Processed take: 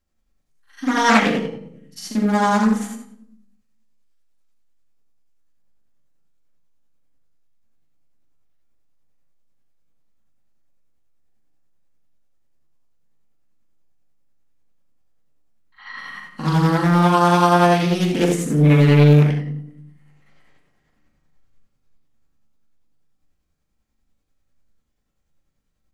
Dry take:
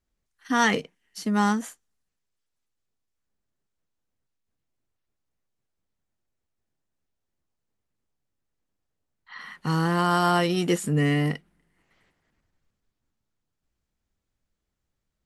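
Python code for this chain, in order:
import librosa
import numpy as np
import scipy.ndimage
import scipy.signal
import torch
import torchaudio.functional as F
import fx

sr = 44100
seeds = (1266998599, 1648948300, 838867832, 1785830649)

y = fx.room_shoebox(x, sr, seeds[0], volume_m3=340.0, walls='furnished', distance_m=2.2)
y = fx.stretch_grains(y, sr, factor=1.7, grain_ms=196.0)
y = fx.doppler_dist(y, sr, depth_ms=0.64)
y = y * librosa.db_to_amplitude(2.5)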